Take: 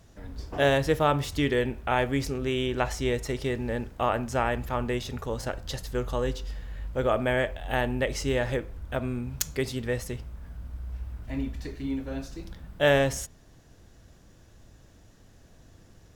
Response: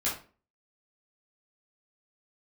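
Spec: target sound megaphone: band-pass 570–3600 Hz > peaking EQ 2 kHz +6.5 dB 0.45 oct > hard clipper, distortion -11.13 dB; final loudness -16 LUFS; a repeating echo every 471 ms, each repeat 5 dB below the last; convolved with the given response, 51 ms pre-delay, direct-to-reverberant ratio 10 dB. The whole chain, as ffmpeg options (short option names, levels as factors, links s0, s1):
-filter_complex "[0:a]aecho=1:1:471|942|1413|1884|2355|2826|3297:0.562|0.315|0.176|0.0988|0.0553|0.031|0.0173,asplit=2[s0][s1];[1:a]atrim=start_sample=2205,adelay=51[s2];[s1][s2]afir=irnorm=-1:irlink=0,volume=0.133[s3];[s0][s3]amix=inputs=2:normalize=0,highpass=570,lowpass=3600,equalizer=f=2000:t=o:w=0.45:g=6.5,asoftclip=type=hard:threshold=0.0841,volume=5.31"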